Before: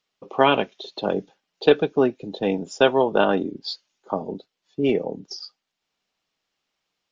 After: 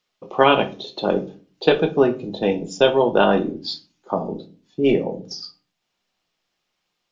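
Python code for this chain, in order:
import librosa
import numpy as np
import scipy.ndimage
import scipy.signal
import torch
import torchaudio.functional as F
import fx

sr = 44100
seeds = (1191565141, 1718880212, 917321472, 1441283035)

y = fx.peak_eq(x, sr, hz=1300.0, db=fx.line((2.51, -10.0), (3.18, -1.5)), octaves=1.6, at=(2.51, 3.18), fade=0.02)
y = fx.room_shoebox(y, sr, seeds[0], volume_m3=210.0, walls='furnished', distance_m=0.92)
y = y * 10.0 ** (2.0 / 20.0)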